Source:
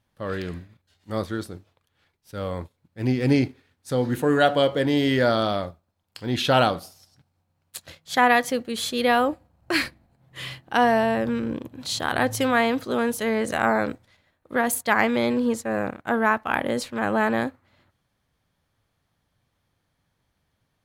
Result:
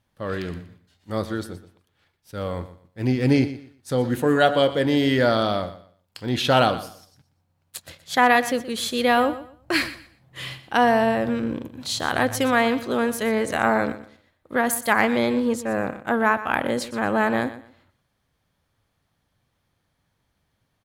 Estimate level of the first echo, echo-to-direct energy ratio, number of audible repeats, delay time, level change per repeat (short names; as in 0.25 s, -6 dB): -14.5 dB, -14.5 dB, 2, 0.121 s, -12.5 dB